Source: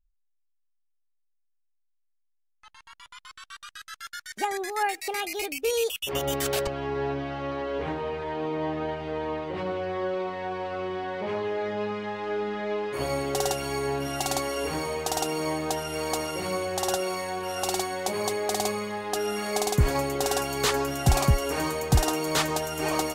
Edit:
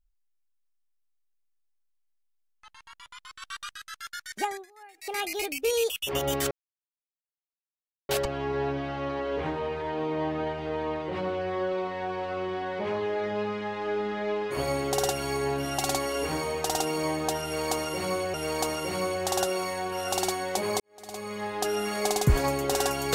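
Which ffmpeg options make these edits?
ffmpeg -i in.wav -filter_complex "[0:a]asplit=8[link_01][link_02][link_03][link_04][link_05][link_06][link_07][link_08];[link_01]atrim=end=3.422[link_09];[link_02]atrim=start=3.418:end=3.732,asetpts=PTS-STARTPTS,volume=5dB[link_10];[link_03]atrim=start=3.728:end=4.66,asetpts=PTS-STARTPTS,afade=type=out:start_time=0.682:duration=0.25:silence=0.0668344[link_11];[link_04]atrim=start=4.66:end=4.94,asetpts=PTS-STARTPTS,volume=-23.5dB[link_12];[link_05]atrim=start=4.94:end=6.51,asetpts=PTS-STARTPTS,afade=type=in:duration=0.25:silence=0.0668344,afade=type=out:start_time=1.566:duration=0.004:curve=hsin,apad=pad_dur=1.58[link_13];[link_06]atrim=start=6.51:end=16.762,asetpts=PTS-STARTPTS,afade=type=in:duration=0.004:curve=hsin[link_14];[link_07]atrim=start=15.848:end=18.31,asetpts=PTS-STARTPTS,afade=type=out:start_time=2.458:duration=0.004:curve=hsin[link_15];[link_08]atrim=start=18.31,asetpts=PTS-STARTPTS,afade=type=in:duration=0.65:curve=qua[link_16];[link_09][link_10]acrossfade=duration=0.004:curve1=hsin:curve2=hsin[link_17];[link_11][link_12][link_13][link_14]concat=n=4:v=0:a=1[link_18];[link_17][link_18]acrossfade=duration=0.004:curve1=hsin:curve2=hsin[link_19];[link_15][link_16]concat=n=2:v=0:a=1[link_20];[link_19][link_20]acrossfade=duration=0.004:curve1=hsin:curve2=hsin" out.wav

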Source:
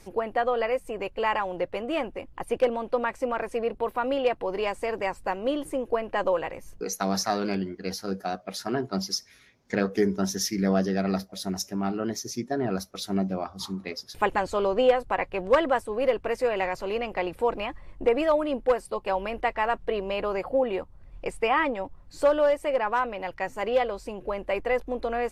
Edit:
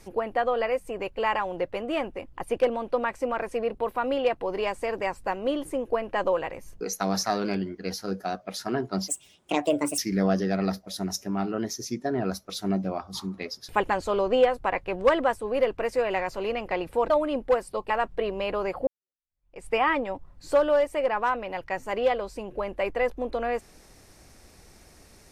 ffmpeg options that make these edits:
ffmpeg -i in.wav -filter_complex "[0:a]asplit=6[link_01][link_02][link_03][link_04][link_05][link_06];[link_01]atrim=end=9.084[link_07];[link_02]atrim=start=9.08:end=10.44,asetpts=PTS-STARTPTS,asetrate=66591,aresample=44100,atrim=end_sample=39719,asetpts=PTS-STARTPTS[link_08];[link_03]atrim=start=10.436:end=17.562[link_09];[link_04]atrim=start=18.278:end=19.082[link_10];[link_05]atrim=start=19.598:end=20.57,asetpts=PTS-STARTPTS,afade=type=out:start_time=0.968:duration=0.004:curve=hsin[link_11];[link_06]atrim=start=20.57,asetpts=PTS-STARTPTS,afade=type=in:duration=0.8:curve=exp[link_12];[link_07][link_08]acrossfade=duration=0.004:curve1=hsin:curve2=hsin[link_13];[link_13][link_09]acrossfade=duration=0.004:curve1=hsin:curve2=hsin[link_14];[link_14][link_10]acrossfade=duration=0.004:curve1=hsin:curve2=hsin[link_15];[link_11][link_12]concat=n=2:v=0:a=1[link_16];[link_15][link_16]acrossfade=duration=0.004:curve1=hsin:curve2=hsin" out.wav

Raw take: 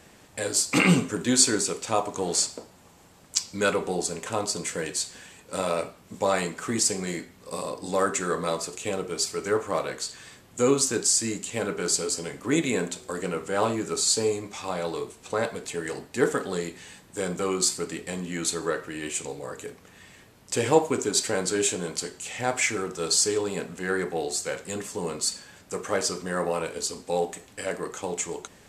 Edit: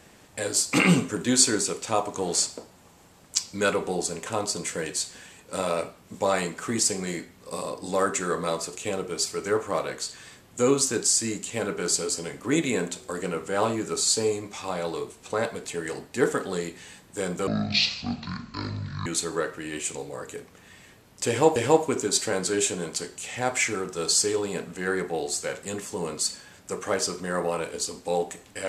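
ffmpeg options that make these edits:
ffmpeg -i in.wav -filter_complex "[0:a]asplit=4[link_01][link_02][link_03][link_04];[link_01]atrim=end=17.474[link_05];[link_02]atrim=start=17.47:end=18.36,asetpts=PTS-STARTPTS,asetrate=24696,aresample=44100[link_06];[link_03]atrim=start=18.356:end=20.862[link_07];[link_04]atrim=start=20.578[link_08];[link_05][link_06]acrossfade=duration=0.004:curve1=hsin:curve2=hsin[link_09];[link_09][link_07]acrossfade=duration=0.004:curve1=hsin:curve2=hsin[link_10];[link_10][link_08]acrossfade=duration=0.004:curve1=hsin:curve2=hsin" out.wav

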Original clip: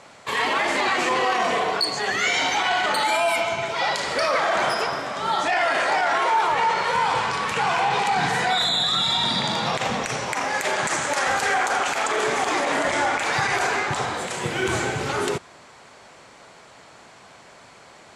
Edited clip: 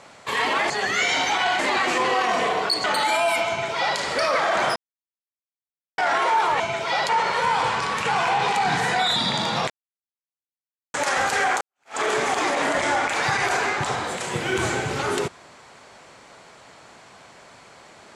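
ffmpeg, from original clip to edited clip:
ffmpeg -i in.wav -filter_complex "[0:a]asplit=12[link_01][link_02][link_03][link_04][link_05][link_06][link_07][link_08][link_09][link_10][link_11][link_12];[link_01]atrim=end=0.702[link_13];[link_02]atrim=start=1.948:end=2.842[link_14];[link_03]atrim=start=0.698:end=1.952[link_15];[link_04]atrim=start=2.838:end=4.76,asetpts=PTS-STARTPTS,afade=type=out:start_time=1.918:duration=0.004:curve=hsin[link_16];[link_05]atrim=start=4.76:end=5.98,asetpts=PTS-STARTPTS,volume=0[link_17];[link_06]atrim=start=5.98:end=6.602,asetpts=PTS-STARTPTS,afade=type=in:duration=0.004:curve=hsin[link_18];[link_07]atrim=start=3.488:end=3.982[link_19];[link_08]atrim=start=6.598:end=8.672[link_20];[link_09]atrim=start=9.258:end=9.8,asetpts=PTS-STARTPTS,afade=type=out:start_time=0.538:duration=0.004:curve=hsin[link_21];[link_10]atrim=start=9.8:end=11.04,asetpts=PTS-STARTPTS,volume=0[link_22];[link_11]atrim=start=11.04:end=11.71,asetpts=PTS-STARTPTS,afade=type=in:duration=0.004:curve=hsin,afade=type=out:start_time=0.666:duration=0.004:curve=hsin[link_23];[link_12]atrim=start=11.71,asetpts=PTS-STARTPTS,afade=type=in:duration=0.37:curve=exp[link_24];[link_13][link_14]acrossfade=duration=0.004:curve1=hsin:curve2=hsin[link_25];[link_25][link_15]acrossfade=duration=0.004:curve1=hsin:curve2=hsin[link_26];[link_16][link_17][link_18]concat=n=3:v=0:a=1[link_27];[link_26][link_27]acrossfade=duration=0.004:curve1=hsin:curve2=hsin[link_28];[link_28][link_19]acrossfade=duration=0.004:curve1=hsin:curve2=hsin[link_29];[link_29][link_20]acrossfade=duration=0.004:curve1=hsin:curve2=hsin[link_30];[link_21][link_22][link_23][link_24]concat=n=4:v=0:a=1[link_31];[link_30][link_31]acrossfade=duration=0.004:curve1=hsin:curve2=hsin" out.wav

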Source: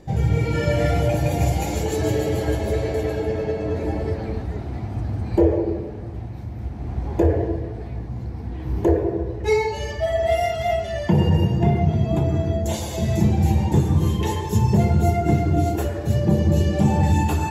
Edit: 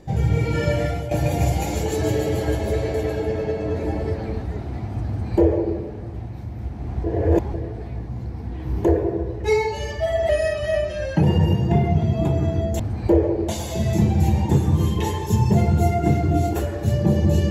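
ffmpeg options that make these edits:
ffmpeg -i in.wav -filter_complex "[0:a]asplit=8[link_01][link_02][link_03][link_04][link_05][link_06][link_07][link_08];[link_01]atrim=end=1.11,asetpts=PTS-STARTPTS,afade=type=out:start_time=0.68:duration=0.43:silence=0.251189[link_09];[link_02]atrim=start=1.11:end=7.042,asetpts=PTS-STARTPTS,afade=type=in:duration=0.004:curve=hsin:silence=0.251189[link_10];[link_03]atrim=start=7.038:end=7.542,asetpts=PTS-STARTPTS,areverse[link_11];[link_04]atrim=start=7.538:end=10.294[link_12];[link_05]atrim=start=10.29:end=11.15,asetpts=PTS-STARTPTS,asetrate=40131,aresample=44100[link_13];[link_06]atrim=start=11.146:end=12.712[link_14];[link_07]atrim=start=5.078:end=5.772[link_15];[link_08]atrim=start=12.708[link_16];[link_09][link_10]concat=n=2:v=0:a=1[link_17];[link_17][link_11]acrossfade=duration=0.004:curve1=hsin:curve2=hsin[link_18];[link_18][link_12]acrossfade=duration=0.004:curve1=hsin:curve2=hsin[link_19];[link_19][link_13]acrossfade=duration=0.004:curve1=hsin:curve2=hsin[link_20];[link_20][link_14]acrossfade=duration=0.004:curve1=hsin:curve2=hsin[link_21];[link_21][link_15]acrossfade=duration=0.004:curve1=hsin:curve2=hsin[link_22];[link_22][link_16]acrossfade=duration=0.004:curve1=hsin:curve2=hsin" out.wav

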